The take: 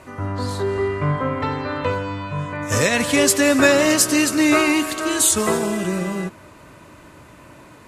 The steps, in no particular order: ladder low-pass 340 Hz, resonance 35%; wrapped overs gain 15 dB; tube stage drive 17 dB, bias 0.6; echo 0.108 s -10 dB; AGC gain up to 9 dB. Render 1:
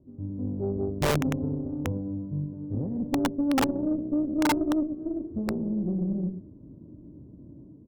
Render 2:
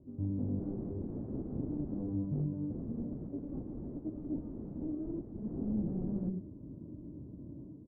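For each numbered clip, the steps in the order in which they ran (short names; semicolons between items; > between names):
echo > AGC > ladder low-pass > wrapped overs > tube stage; AGC > echo > wrapped overs > ladder low-pass > tube stage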